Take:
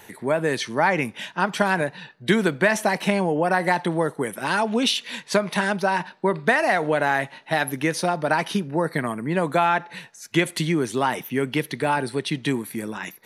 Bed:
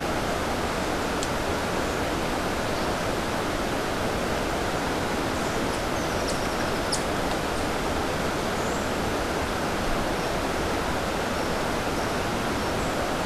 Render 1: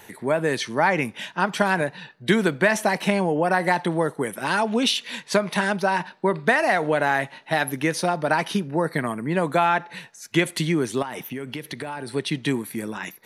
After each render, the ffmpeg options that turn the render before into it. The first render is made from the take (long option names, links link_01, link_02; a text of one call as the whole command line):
ffmpeg -i in.wav -filter_complex "[0:a]asettb=1/sr,asplit=3[link_01][link_02][link_03];[link_01]atrim=end=11.024[link_04];[link_02]atrim=start=11.02:end=12.12,asetpts=PTS-STARTPTS,afade=type=in:duration=0.004:curve=qsin,afade=type=out:start_time=1.096:duration=0.004:curve=qsin,acompressor=threshold=-27dB:ratio=12:attack=3.2:release=140:knee=1:detection=peak[link_05];[link_03]atrim=start=12.116[link_06];[link_04][link_05]acrossfade=duration=0.004:curve1=hsin:curve2=qsin[link_07];[link_07][link_06]acrossfade=duration=0.004:curve1=qsin:curve2=hsin" out.wav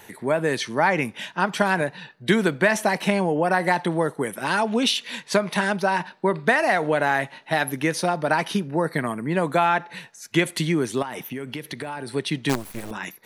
ffmpeg -i in.wav -filter_complex "[0:a]asettb=1/sr,asplit=3[link_01][link_02][link_03];[link_01]atrim=end=12.494[link_04];[link_02]atrim=start=12.49:end=12.91,asetpts=PTS-STARTPTS,afade=type=in:duration=0.004:curve=qsin,afade=type=out:start_time=0.416:duration=0.004:curve=qsin,acrusher=bits=4:dc=4:mix=0:aa=0.000001[link_05];[link_03]atrim=start=12.906[link_06];[link_04][link_05]acrossfade=duration=0.004:curve1=hsin:curve2=qsin[link_07];[link_07][link_06]acrossfade=duration=0.004:curve1=qsin:curve2=hsin" out.wav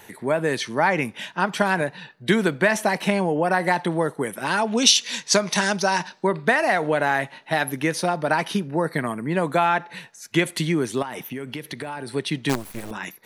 ffmpeg -i in.wav -filter_complex "[0:a]asettb=1/sr,asplit=3[link_01][link_02][link_03];[link_01]atrim=end=4.774[link_04];[link_02]atrim=start=4.77:end=6.27,asetpts=PTS-STARTPTS,afade=type=in:duration=0.004:curve=qsin,afade=type=out:start_time=1.496:duration=0.004:curve=qsin,equalizer=frequency=6000:width=1.3:gain=15[link_05];[link_03]atrim=start=6.266[link_06];[link_04][link_05]acrossfade=duration=0.004:curve1=hsin:curve2=qsin[link_07];[link_07][link_06]acrossfade=duration=0.004:curve1=qsin:curve2=hsin" out.wav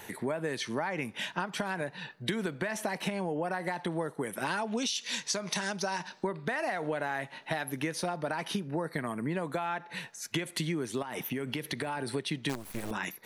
ffmpeg -i in.wav -af "alimiter=limit=-10dB:level=0:latency=1:release=143,acompressor=threshold=-30dB:ratio=6" out.wav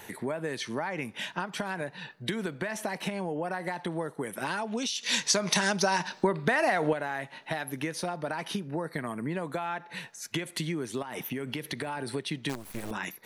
ffmpeg -i in.wav -filter_complex "[0:a]asplit=3[link_01][link_02][link_03];[link_01]atrim=end=5.032[link_04];[link_02]atrim=start=5.028:end=6.932,asetpts=PTS-STARTPTS,volume=7dB[link_05];[link_03]atrim=start=6.928[link_06];[link_04][link_05]acrossfade=duration=0.004:curve1=hsin:curve2=hsin[link_07];[link_07][link_06]acrossfade=duration=0.004:curve1=hsin:curve2=hsin" out.wav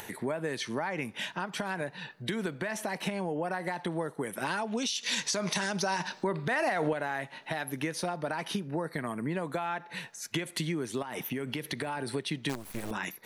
ffmpeg -i in.wav -af "alimiter=limit=-20dB:level=0:latency=1:release=53,acompressor=mode=upward:threshold=-41dB:ratio=2.5" out.wav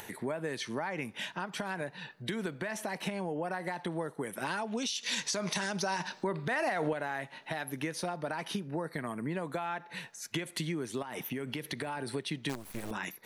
ffmpeg -i in.wav -af "volume=-2.5dB" out.wav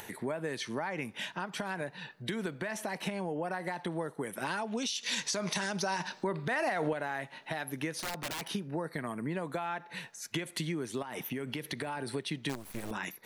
ffmpeg -i in.wav -filter_complex "[0:a]asettb=1/sr,asplit=3[link_01][link_02][link_03];[link_01]atrim=end=7.994[link_04];[link_02]atrim=start=7.99:end=8.5,asetpts=PTS-STARTPTS,afade=type=in:duration=0.004:curve=qsin,afade=type=out:start_time=0.506:duration=0.004:curve=qsin,aeval=exprs='(mod(35.5*val(0)+1,2)-1)/35.5':channel_layout=same[link_05];[link_03]atrim=start=8.496[link_06];[link_04][link_05]acrossfade=duration=0.004:curve1=hsin:curve2=qsin[link_07];[link_07][link_06]acrossfade=duration=0.004:curve1=qsin:curve2=hsin" out.wav